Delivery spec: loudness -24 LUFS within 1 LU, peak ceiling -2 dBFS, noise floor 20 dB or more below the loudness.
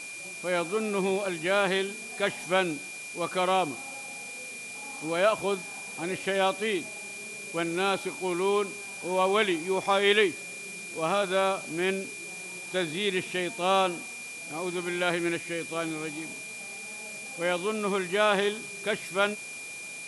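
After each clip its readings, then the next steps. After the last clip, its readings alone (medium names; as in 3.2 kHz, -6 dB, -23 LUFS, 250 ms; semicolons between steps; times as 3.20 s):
steady tone 2.4 kHz; tone level -39 dBFS; noise floor -40 dBFS; noise floor target -49 dBFS; loudness -29.0 LUFS; peak level -9.5 dBFS; loudness target -24.0 LUFS
-> band-stop 2.4 kHz, Q 30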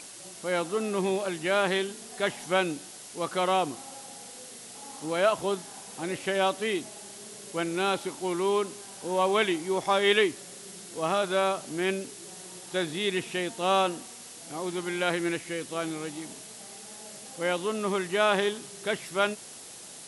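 steady tone not found; noise floor -45 dBFS; noise floor target -49 dBFS
-> noise reduction 6 dB, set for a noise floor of -45 dBFS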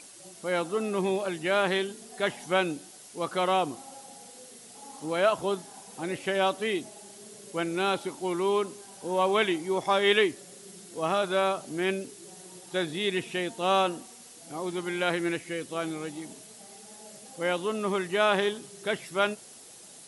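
noise floor -49 dBFS; loudness -28.5 LUFS; peak level -11.0 dBFS; loudness target -24.0 LUFS
-> trim +4.5 dB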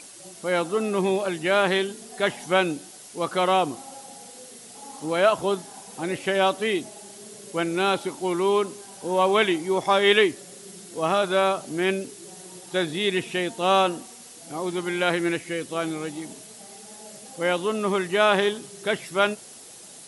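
loudness -24.0 LUFS; peak level -6.5 dBFS; noise floor -45 dBFS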